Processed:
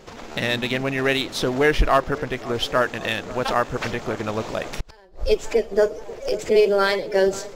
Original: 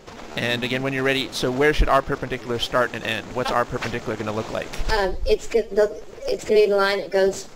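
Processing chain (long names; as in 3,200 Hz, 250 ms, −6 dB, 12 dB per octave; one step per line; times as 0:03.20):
feedback echo with a band-pass in the loop 539 ms, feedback 71%, band-pass 610 Hz, level −17 dB
0:04.74–0:05.21: gate with flip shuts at −13 dBFS, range −30 dB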